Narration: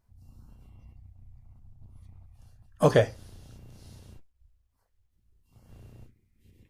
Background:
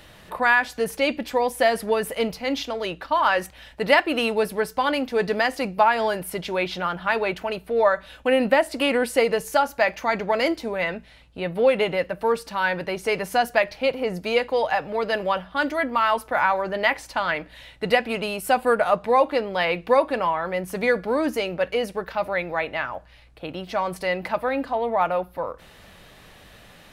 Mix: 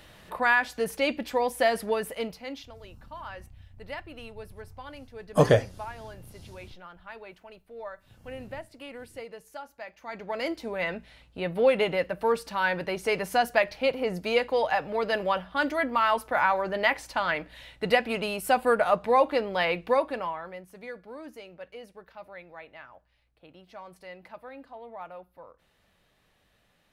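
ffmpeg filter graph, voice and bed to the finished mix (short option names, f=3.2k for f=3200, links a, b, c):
-filter_complex "[0:a]adelay=2550,volume=1dB[a];[1:a]volume=14dB,afade=t=out:st=1.79:d=0.97:silence=0.141254,afade=t=in:st=9.97:d=1.07:silence=0.125893,afade=t=out:st=19.63:d=1.05:silence=0.149624[b];[a][b]amix=inputs=2:normalize=0"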